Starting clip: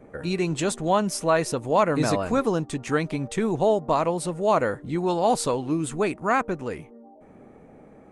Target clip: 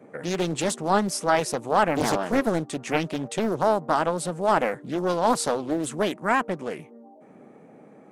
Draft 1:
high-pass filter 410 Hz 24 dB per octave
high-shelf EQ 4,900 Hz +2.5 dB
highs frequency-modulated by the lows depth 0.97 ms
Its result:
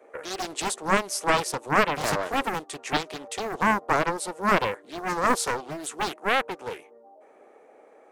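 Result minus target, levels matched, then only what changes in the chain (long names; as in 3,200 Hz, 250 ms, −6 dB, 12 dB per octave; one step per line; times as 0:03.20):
500 Hz band −3.0 dB
change: high-pass filter 140 Hz 24 dB per octave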